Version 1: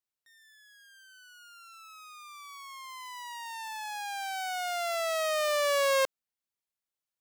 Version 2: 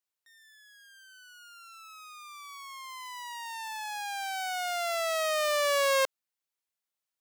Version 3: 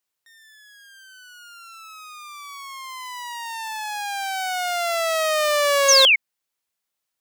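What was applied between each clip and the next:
low shelf 240 Hz -11.5 dB; gain +1.5 dB
painted sound fall, 5.88–6.16, 2100–6800 Hz -22 dBFS; gain +7.5 dB

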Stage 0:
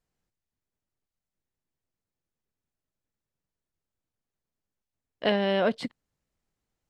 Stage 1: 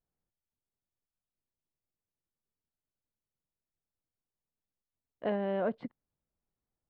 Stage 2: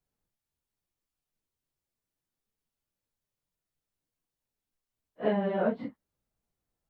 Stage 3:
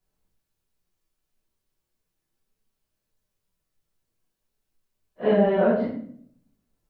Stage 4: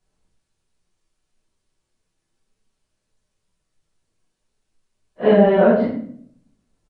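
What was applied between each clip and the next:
LPF 1300 Hz 12 dB/oct; gain -6.5 dB
phase scrambler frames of 0.1 s; gain +4 dB
shoebox room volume 88 m³, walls mixed, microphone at 1.1 m; gain +2.5 dB
downsampling 22050 Hz; gain +6.5 dB

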